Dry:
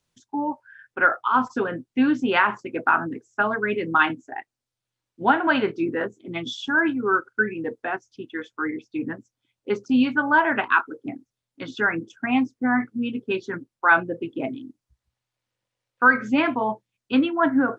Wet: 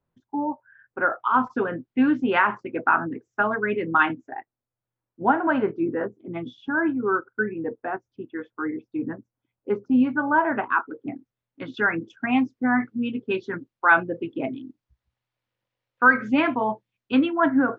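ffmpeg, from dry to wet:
-af "asetnsamples=n=441:p=0,asendcmd='1.2 lowpass f 2400;4.35 lowpass f 1300;10.91 lowpass f 2400;11.74 lowpass f 3700',lowpass=1.2k"

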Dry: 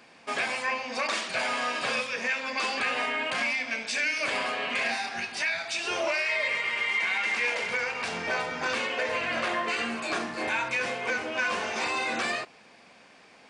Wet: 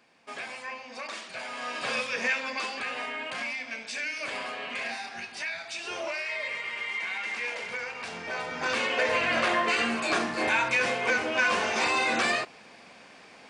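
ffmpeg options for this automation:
-af "volume=11dB,afade=t=in:st=1.52:d=0.74:silence=0.281838,afade=t=out:st=2.26:d=0.45:silence=0.421697,afade=t=in:st=8.31:d=0.72:silence=0.354813"

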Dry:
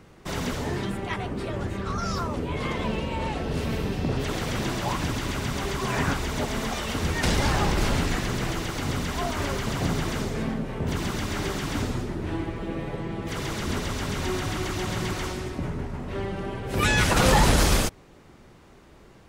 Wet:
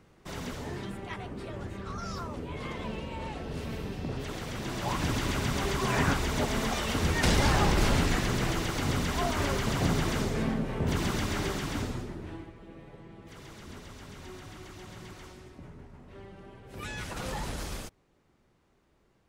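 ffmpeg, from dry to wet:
-af "volume=-1dB,afade=t=in:st=4.62:d=0.53:silence=0.421697,afade=t=out:st=11.16:d=0.94:silence=0.446684,afade=t=out:st=12.1:d=0.43:silence=0.354813"

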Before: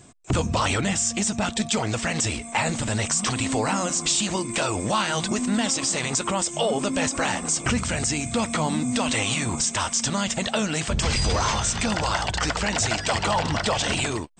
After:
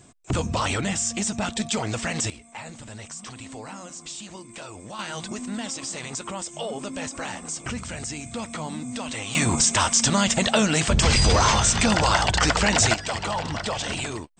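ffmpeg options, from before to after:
-af "asetnsamples=n=441:p=0,asendcmd='2.3 volume volume -14.5dB;4.99 volume volume -8dB;9.35 volume volume 4.5dB;12.94 volume volume -4.5dB',volume=-2dB"

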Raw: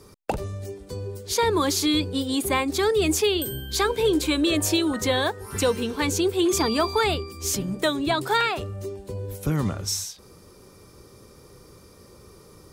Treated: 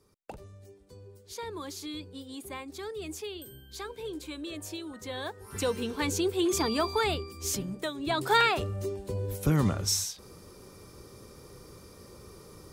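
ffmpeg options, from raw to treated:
-af "volume=7dB,afade=t=in:st=5.04:d=0.83:silence=0.266073,afade=t=out:st=7.56:d=0.38:silence=0.421697,afade=t=in:st=7.94:d=0.45:silence=0.237137"

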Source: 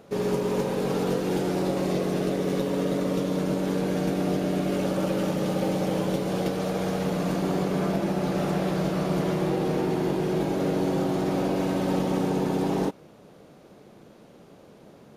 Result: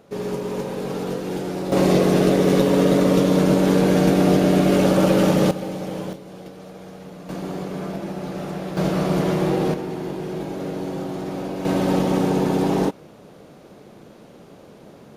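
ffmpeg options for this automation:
-af "asetnsamples=n=441:p=0,asendcmd='1.72 volume volume 9.5dB;5.51 volume volume -3dB;6.13 volume volume -12dB;7.29 volume volume -3.5dB;8.77 volume volume 5dB;9.74 volume volume -3dB;11.65 volume volume 5.5dB',volume=-1dB"

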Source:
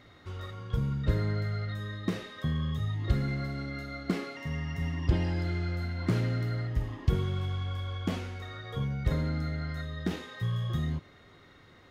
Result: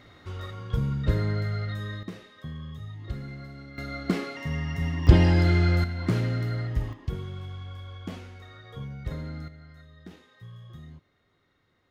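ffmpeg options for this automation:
-af "asetnsamples=n=441:p=0,asendcmd='2.03 volume volume -7.5dB;3.78 volume volume 4dB;5.07 volume volume 10.5dB;5.84 volume volume 2.5dB;6.93 volume volume -5.5dB;9.48 volume volume -14dB',volume=3dB"

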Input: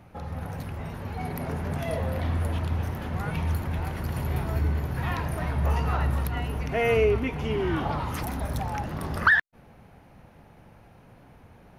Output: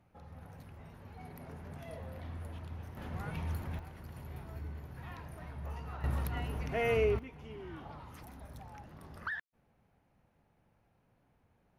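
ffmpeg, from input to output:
-af "asetnsamples=n=441:p=0,asendcmd='2.97 volume volume -10dB;3.79 volume volume -17.5dB;6.04 volume volume -7.5dB;7.19 volume volume -19.5dB',volume=-16.5dB"

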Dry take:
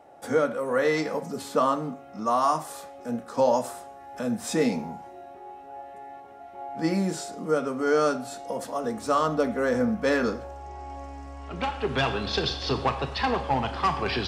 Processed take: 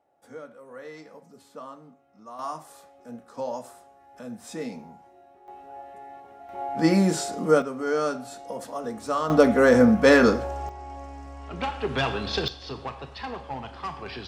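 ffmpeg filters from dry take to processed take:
-af "asetnsamples=n=441:p=0,asendcmd='2.39 volume volume -10dB;5.48 volume volume -1dB;6.49 volume volume 5.5dB;7.62 volume volume -3dB;9.3 volume volume 8dB;10.69 volume volume -0.5dB;12.48 volume volume -9.5dB',volume=-18dB"

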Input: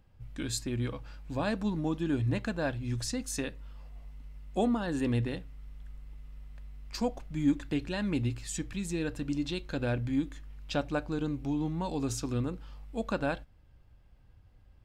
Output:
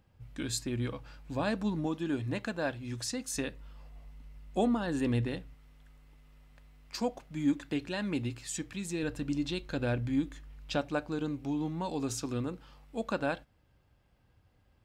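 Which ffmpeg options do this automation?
-af "asetnsamples=n=441:p=0,asendcmd='1.86 highpass f 240;3.35 highpass f 57;5.54 highpass f 200;9.03 highpass f 50;10.77 highpass f 170',highpass=f=80:p=1"

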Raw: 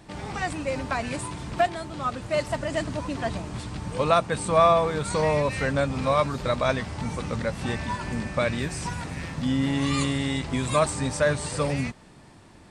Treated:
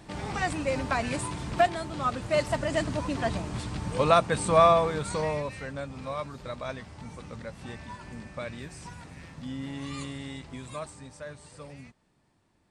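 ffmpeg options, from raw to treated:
-af "afade=t=out:st=4.53:d=1.08:silence=0.251189,afade=t=out:st=10.29:d=0.8:silence=0.446684"

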